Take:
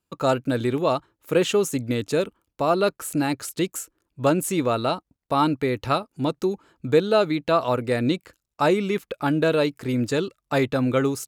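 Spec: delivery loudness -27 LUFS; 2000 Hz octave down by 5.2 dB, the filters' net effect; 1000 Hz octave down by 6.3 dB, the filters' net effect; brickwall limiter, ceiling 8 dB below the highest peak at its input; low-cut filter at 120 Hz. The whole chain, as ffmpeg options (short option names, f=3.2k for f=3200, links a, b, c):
-af "highpass=120,equalizer=f=1k:t=o:g=-7.5,equalizer=f=2k:t=o:g=-4.5,volume=0.5dB,alimiter=limit=-15.5dB:level=0:latency=1"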